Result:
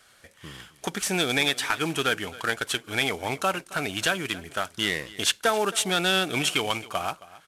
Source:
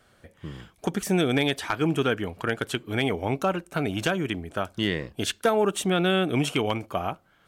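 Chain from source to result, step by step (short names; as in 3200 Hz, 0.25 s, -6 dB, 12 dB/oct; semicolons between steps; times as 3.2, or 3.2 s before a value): CVSD 64 kbps; tilt shelf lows -7.5 dB, about 810 Hz; echo 0.269 s -19 dB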